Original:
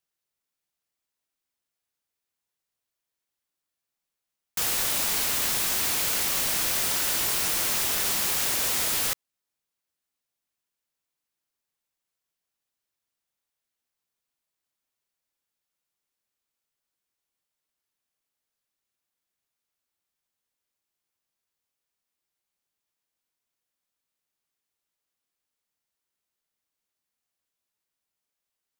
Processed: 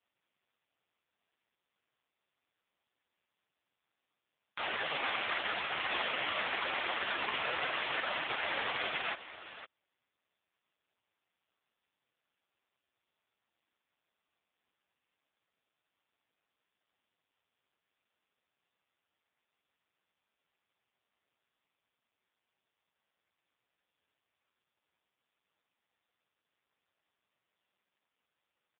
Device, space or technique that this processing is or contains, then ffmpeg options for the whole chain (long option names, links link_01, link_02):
satellite phone: -af "highpass=390,lowpass=3200,aecho=1:1:510:0.188,volume=6dB" -ar 8000 -c:a libopencore_amrnb -b:a 4750